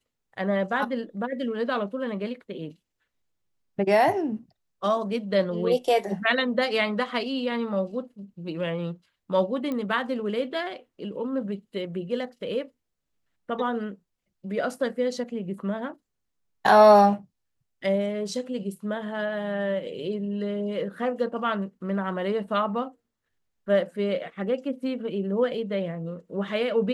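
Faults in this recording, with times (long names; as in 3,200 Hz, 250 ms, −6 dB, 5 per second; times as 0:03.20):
0:09.72: click −19 dBFS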